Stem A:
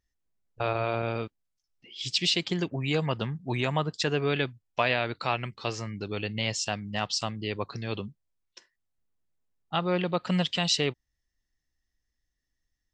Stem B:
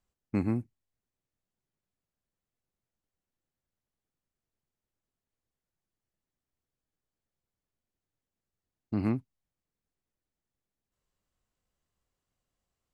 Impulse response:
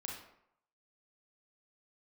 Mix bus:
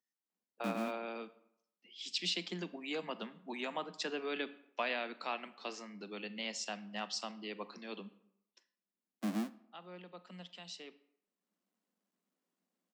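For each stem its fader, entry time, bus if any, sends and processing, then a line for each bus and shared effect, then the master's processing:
8.21 s -11.5 dB -> 8.93 s -24 dB, 0.00 s, send -9 dB, none
-7.0 dB, 0.30 s, send -22 dB, square wave that keeps the level; bass shelf 290 Hz +11 dB; auto duck -13 dB, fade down 0.65 s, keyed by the first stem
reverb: on, RT60 0.75 s, pre-delay 30 ms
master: steep high-pass 180 Hz 96 dB/octave; peaking EQ 410 Hz -2 dB

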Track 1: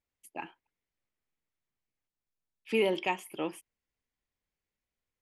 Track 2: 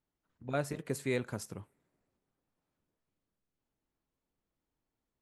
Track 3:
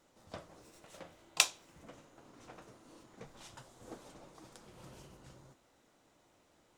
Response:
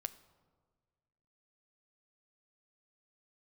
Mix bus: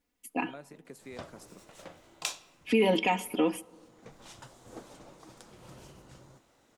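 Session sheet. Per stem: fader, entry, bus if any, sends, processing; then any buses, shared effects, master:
+1.5 dB, 0.00 s, send -3.5 dB, peaking EQ 280 Hz +8 dB 1 oct; comb 4.1 ms, depth 96%
-2.5 dB, 0.00 s, no send, high-pass 160 Hz 24 dB/octave; compression 2:1, threshold -49 dBFS, peak gain reduction 12 dB
0.0 dB, 0.85 s, send -4 dB, auto duck -17 dB, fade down 0.50 s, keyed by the first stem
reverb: on, RT60 1.6 s, pre-delay 7 ms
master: peak limiter -16 dBFS, peak gain reduction 10.5 dB

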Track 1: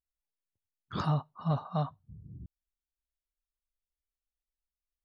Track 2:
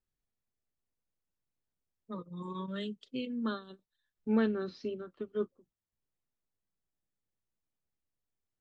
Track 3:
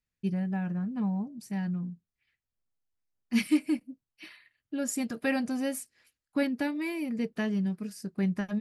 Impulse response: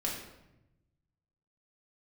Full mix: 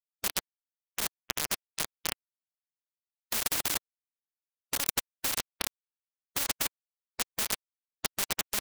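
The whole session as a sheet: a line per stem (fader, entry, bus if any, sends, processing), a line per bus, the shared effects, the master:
-2.0 dB, 0.30 s, no send, steep low-pass 3.1 kHz 72 dB/octave
-12.5 dB, 0.00 s, no send, compression, threshold -35 dBFS, peak gain reduction 11.5 dB
-6.5 dB, 0.00 s, send -7.5 dB, transient shaper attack +11 dB, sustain -3 dB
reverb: on, RT60 0.90 s, pre-delay 4 ms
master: bit crusher 4-bit; spectrum-flattening compressor 10:1

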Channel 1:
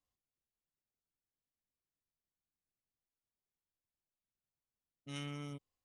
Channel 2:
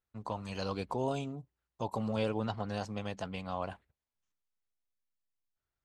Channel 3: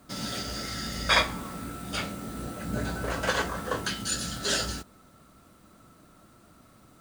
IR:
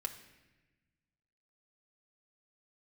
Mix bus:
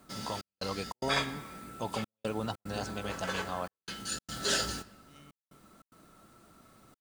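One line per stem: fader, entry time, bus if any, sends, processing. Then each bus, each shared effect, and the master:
-14.0 dB, 0.00 s, no send, none
0.0 dB, 0.00 s, no send, treble shelf 4.9 kHz +11 dB
-5.0 dB, 0.00 s, send -5.5 dB, auto duck -15 dB, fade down 0.40 s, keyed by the second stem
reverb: on, RT60 1.1 s, pre-delay 5 ms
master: bass shelf 120 Hz -4.5 dB; trance gate "xxxx..xxx.xxxxxx" 147 bpm -60 dB

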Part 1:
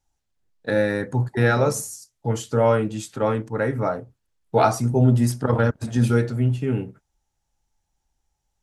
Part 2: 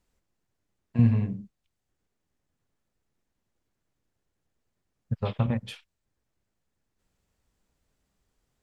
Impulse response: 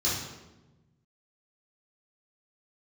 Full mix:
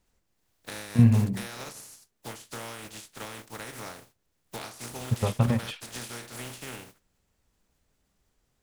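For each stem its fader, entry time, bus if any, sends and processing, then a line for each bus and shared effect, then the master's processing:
-12.5 dB, 0.00 s, no send, spectral contrast reduction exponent 0.31; compression 12:1, threshold -23 dBFS, peak gain reduction 12.5 dB
+2.5 dB, 0.00 s, no send, none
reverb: none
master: none

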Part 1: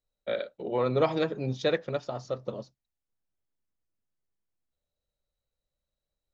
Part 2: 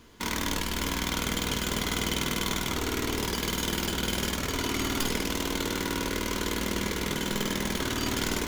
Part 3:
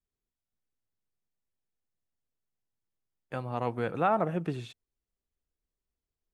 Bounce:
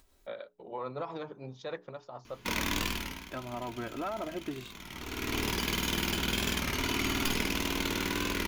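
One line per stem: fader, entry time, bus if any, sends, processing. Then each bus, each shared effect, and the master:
-11.0 dB, 0.00 s, bus A, no send, tremolo 6.9 Hz, depth 42%; peaking EQ 990 Hz +10.5 dB 0.84 oct; hum notches 60/120/180/240/300/360/420 Hz
-2.0 dB, 2.25 s, no bus, no send, graphic EQ with 31 bands 500 Hz -6 dB, 2.5 kHz +7 dB, 8 kHz -6 dB; auto duck -18 dB, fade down 0.40 s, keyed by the third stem
-5.0 dB, 0.00 s, bus A, no send, comb 3.1 ms, depth 86%
bus A: 0.0 dB, upward compressor, threshold -45 dBFS; peak limiter -27 dBFS, peak gain reduction 10.5 dB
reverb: none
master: warped record 33 1/3 rpm, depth 100 cents

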